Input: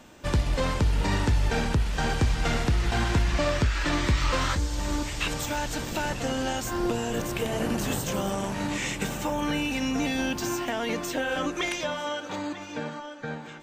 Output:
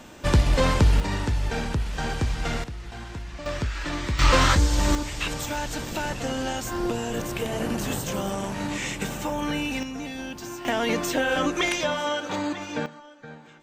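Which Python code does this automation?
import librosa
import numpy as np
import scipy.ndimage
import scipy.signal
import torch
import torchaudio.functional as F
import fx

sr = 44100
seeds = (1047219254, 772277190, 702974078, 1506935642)

y = fx.gain(x, sr, db=fx.steps((0.0, 5.5), (1.0, -2.0), (2.64, -12.5), (3.46, -4.0), (4.19, 7.5), (4.95, 0.0), (9.83, -7.0), (10.65, 4.5), (12.86, -8.0)))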